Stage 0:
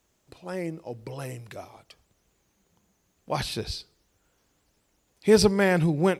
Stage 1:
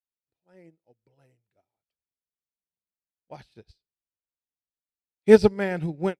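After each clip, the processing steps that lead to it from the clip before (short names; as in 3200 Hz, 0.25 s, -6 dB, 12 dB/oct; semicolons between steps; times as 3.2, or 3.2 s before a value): high shelf 6200 Hz -11.5 dB; notch 1100 Hz, Q 5.1; upward expander 2.5:1, over -43 dBFS; gain +6 dB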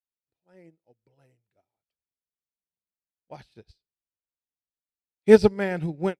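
nothing audible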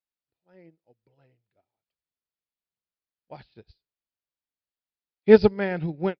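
downsampling 11025 Hz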